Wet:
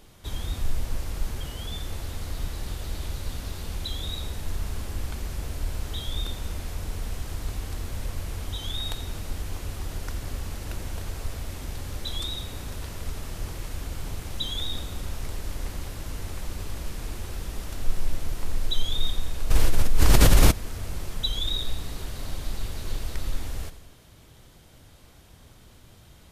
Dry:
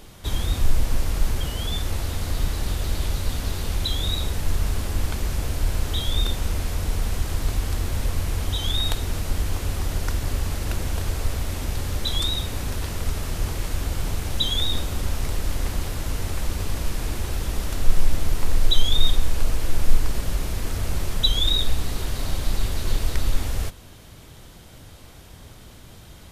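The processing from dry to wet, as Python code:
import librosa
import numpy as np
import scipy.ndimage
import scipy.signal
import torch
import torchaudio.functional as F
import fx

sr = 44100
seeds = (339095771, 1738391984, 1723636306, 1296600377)

p1 = x + fx.echo_feedback(x, sr, ms=86, feedback_pct=59, wet_db=-13.5, dry=0)
p2 = fx.env_flatten(p1, sr, amount_pct=100, at=(19.5, 20.5), fade=0.02)
y = p2 * librosa.db_to_amplitude(-7.5)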